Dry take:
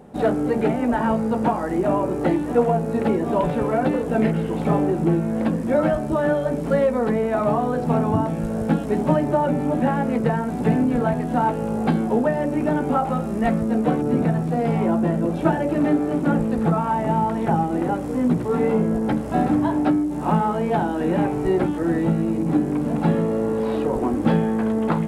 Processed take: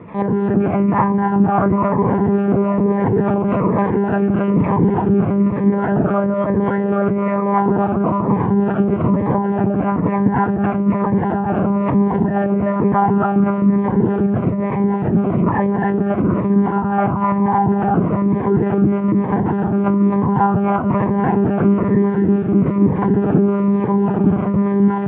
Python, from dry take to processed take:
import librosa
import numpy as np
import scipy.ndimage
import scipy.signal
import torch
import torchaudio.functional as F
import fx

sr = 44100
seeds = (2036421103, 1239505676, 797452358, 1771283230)

p1 = fx.over_compress(x, sr, threshold_db=-24.0, ratio=-0.5)
p2 = x + (p1 * librosa.db_to_amplitude(2.5))
p3 = fx.quant_dither(p2, sr, seeds[0], bits=6, dither='none')
p4 = fx.harmonic_tremolo(p3, sr, hz=3.5, depth_pct=70, crossover_hz=400.0)
p5 = p4 + fx.echo_feedback(p4, sr, ms=262, feedback_pct=40, wet_db=-4.5, dry=0)
p6 = fx.lpc_monotone(p5, sr, seeds[1], pitch_hz=200.0, order=8)
p7 = fx.cabinet(p6, sr, low_hz=110.0, low_slope=24, high_hz=2200.0, hz=(180.0, 560.0, 1000.0), db=(4, -6, 7))
p8 = fx.notch_cascade(p7, sr, direction='falling', hz=1.1)
y = p8 * librosa.db_to_amplitude(5.0)